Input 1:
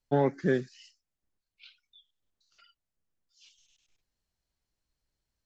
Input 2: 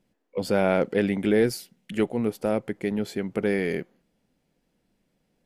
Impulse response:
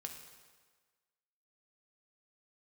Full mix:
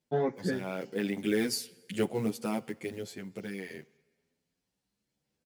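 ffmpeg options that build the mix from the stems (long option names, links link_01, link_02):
-filter_complex "[0:a]volume=-1.5dB,asplit=2[link_01][link_02];[link_02]volume=-11dB[link_03];[1:a]equalizer=frequency=6600:width=0.46:gain=10,acrusher=bits=6:mode=log:mix=0:aa=0.000001,aphaser=in_gain=1:out_gain=1:delay=1.1:decay=0.29:speed=0.94:type=sinusoidal,volume=-5dB,afade=type=in:start_time=0.74:duration=0.8:silence=0.316228,afade=type=out:start_time=2.65:duration=0.55:silence=0.375837,asplit=3[link_04][link_05][link_06];[link_05]volume=-12dB[link_07];[link_06]apad=whole_len=240439[link_08];[link_01][link_08]sidechaincompress=threshold=-38dB:ratio=8:attack=16:release=320[link_09];[2:a]atrim=start_sample=2205[link_10];[link_03][link_07]amix=inputs=2:normalize=0[link_11];[link_11][link_10]afir=irnorm=-1:irlink=0[link_12];[link_09][link_04][link_12]amix=inputs=3:normalize=0,highpass=68,asplit=2[link_13][link_14];[link_14]adelay=9.7,afreqshift=0.72[link_15];[link_13][link_15]amix=inputs=2:normalize=1"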